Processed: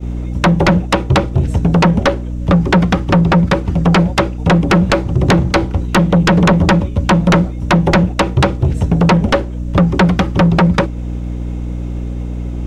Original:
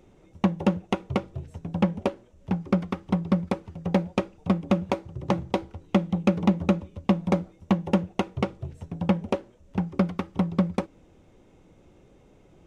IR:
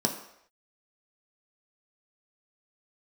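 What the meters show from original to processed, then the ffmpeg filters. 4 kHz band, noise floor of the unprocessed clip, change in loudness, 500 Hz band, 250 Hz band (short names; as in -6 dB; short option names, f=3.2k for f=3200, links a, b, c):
+19.0 dB, -57 dBFS, +13.5 dB, +13.0 dB, +12.0 dB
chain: -filter_complex "[0:a]acrossover=split=4500[a][b];[b]acompressor=threshold=-56dB:ratio=4:attack=1:release=60[c];[a][c]amix=inputs=2:normalize=0,aeval=exprs='val(0)+0.00891*(sin(2*PI*60*n/s)+sin(2*PI*2*60*n/s)/2+sin(2*PI*3*60*n/s)/3+sin(2*PI*4*60*n/s)/4+sin(2*PI*5*60*n/s)/5)':c=same,asplit=2[d][e];[e]acompressor=threshold=-30dB:ratio=6,volume=-0.5dB[f];[d][f]amix=inputs=2:normalize=0,aeval=exprs='0.531*sin(PI/2*5.62*val(0)/0.531)':c=same,agate=range=-33dB:threshold=-14dB:ratio=3:detection=peak"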